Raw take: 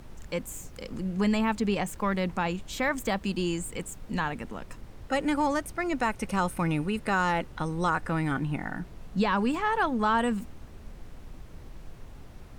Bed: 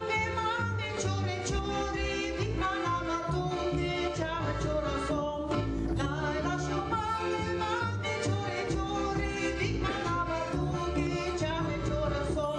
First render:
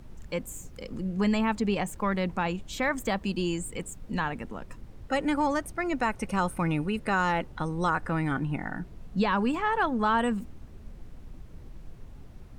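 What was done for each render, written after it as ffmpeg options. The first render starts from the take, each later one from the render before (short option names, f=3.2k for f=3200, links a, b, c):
-af "afftdn=nr=6:nf=-47"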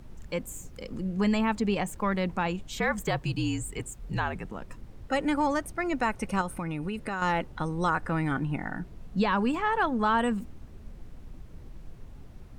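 -filter_complex "[0:a]asettb=1/sr,asplit=3[a][b][c];[a]atrim=end=2.674[d];[b]atrim=start=2.67:end=4.52,asetpts=PTS-STARTPTS,afade=t=in:d=0.004:c=qsin,afade=t=out:st=1.846:d=0.004:c=qsin,afreqshift=-57[e];[c]atrim=start=4.516[f];[d][e]acrossfade=d=0.004:c1=hsin:c2=qsin[g];[g][f]acrossfade=d=0.004:c1=qsin:c2=hsin,asettb=1/sr,asplit=3[h][i][j];[h]atrim=end=6.414[k];[i]atrim=start=6.41:end=7.22,asetpts=PTS-STARTPTS,afade=t=in:d=0.004:c=qsin,afade=t=out:st=0.806:d=0.004:c=qsin,acompressor=threshold=-28dB:ratio=6:attack=3.2:release=140:knee=1:detection=peak[l];[j]atrim=start=7.216[m];[k][l]acrossfade=d=0.004:c1=hsin:c2=qsin[n];[n][m]acrossfade=d=0.004:c1=qsin:c2=hsin"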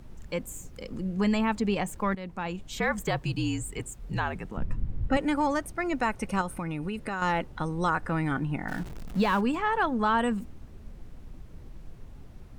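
-filter_complex "[0:a]asettb=1/sr,asplit=3[a][b][c];[a]atrim=end=4.574[d];[b]atrim=start=4.57:end=5.17,asetpts=PTS-STARTPTS,afade=t=in:d=0.004:c=qsin,afade=t=out:st=0.596:d=0.004:c=qsin,bass=f=250:g=15,treble=f=4k:g=-10[e];[c]atrim=start=5.166[f];[d][e]acrossfade=d=0.004:c1=hsin:c2=qsin[g];[g][f]acrossfade=d=0.004:c1=qsin:c2=hsin,asettb=1/sr,asplit=3[h][i][j];[h]atrim=end=8.684[k];[i]atrim=start=8.68:end=9.41,asetpts=PTS-STARTPTS,afade=t=in:d=0.004:c=qsin,afade=t=out:st=0.726:d=0.004:c=qsin,aeval=exprs='val(0)+0.5*0.0133*sgn(val(0))':c=same[l];[j]atrim=start=9.406[m];[k][l]acrossfade=d=0.004:c1=hsin:c2=qsin[n];[n][m]acrossfade=d=0.004:c1=qsin:c2=hsin,asplit=2[o][p];[o]atrim=end=2.15,asetpts=PTS-STARTPTS,afade=t=out:st=2.146:d=0.004:c=hsin:silence=0.223872[q];[p]atrim=start=2.15,asetpts=PTS-STARTPTS,afade=t=in:d=0.62:silence=0.223872[r];[q][r]concat=n=2:v=0:a=1"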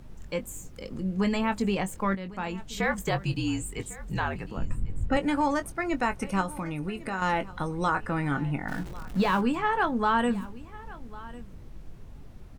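-filter_complex "[0:a]asplit=2[a][b];[b]adelay=21,volume=-10dB[c];[a][c]amix=inputs=2:normalize=0,aecho=1:1:1100:0.106"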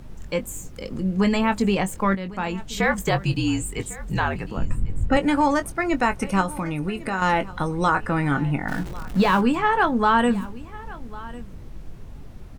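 -af "volume=6dB"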